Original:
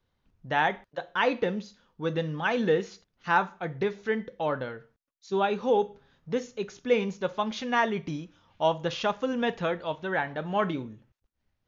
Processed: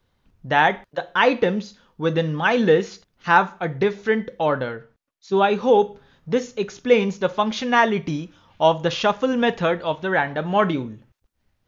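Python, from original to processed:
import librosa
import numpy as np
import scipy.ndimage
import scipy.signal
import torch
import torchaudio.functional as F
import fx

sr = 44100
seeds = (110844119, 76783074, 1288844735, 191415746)

y = fx.high_shelf(x, sr, hz=5400.0, db=-8.5, at=(4.75, 5.37))
y = F.gain(torch.from_numpy(y), 8.0).numpy()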